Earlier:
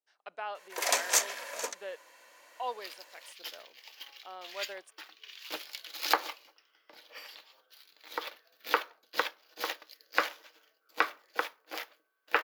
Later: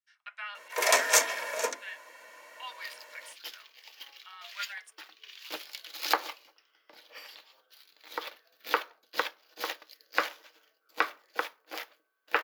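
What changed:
speech: add high-pass 1.5 kHz 24 dB/octave; reverb: on, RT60 0.40 s

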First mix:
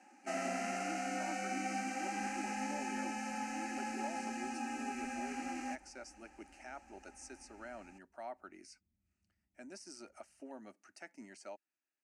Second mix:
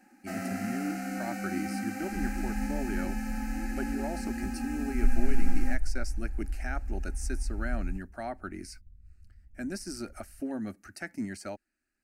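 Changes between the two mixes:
speech +10.5 dB; master: remove cabinet simulation 370–8800 Hz, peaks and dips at 620 Hz +3 dB, 960 Hz +7 dB, 1.6 kHz -5 dB, 2.8 kHz +5 dB, 4.1 kHz -4 dB, 6.2 kHz +4 dB

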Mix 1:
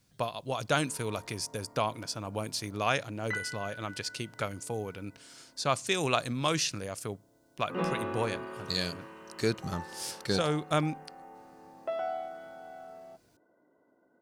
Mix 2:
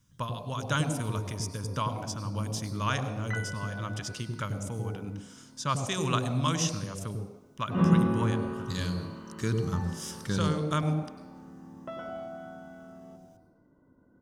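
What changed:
background: remove high-pass 490 Hz 6 dB/octave; reverb: on, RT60 1.0 s

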